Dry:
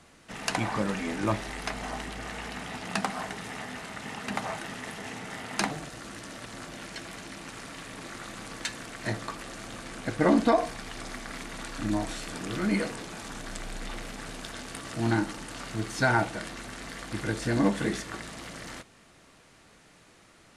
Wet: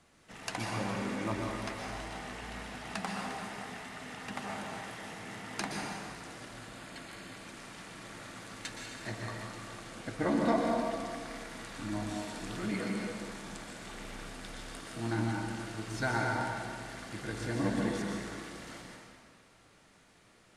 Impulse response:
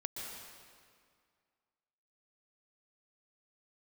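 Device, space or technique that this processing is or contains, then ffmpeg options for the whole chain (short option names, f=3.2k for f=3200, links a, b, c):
stairwell: -filter_complex "[0:a]asettb=1/sr,asplit=3[a][b][c];[a]atrim=end=6.484[d];[b]atrim=start=6.48:end=7.36,asetpts=PTS-STARTPTS,afade=t=in:d=0.004:c=qsin,afade=t=out:st=0.876:d=0.004:c=qsin,bandreject=f=5.7k:w=5.4[e];[c]atrim=start=7.356[f];[d][e]acrossfade=d=0.004:c1=hsin:c2=qsin[g];[g][f]acrossfade=d=0.004:c1=qsin:c2=hsin[h];[1:a]atrim=start_sample=2205[i];[h][i]afir=irnorm=-1:irlink=0,volume=-5.5dB"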